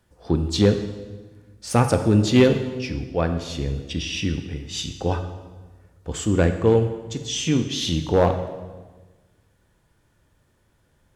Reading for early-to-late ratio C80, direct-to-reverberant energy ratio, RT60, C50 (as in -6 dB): 11.0 dB, 7.0 dB, 1.3 s, 9.0 dB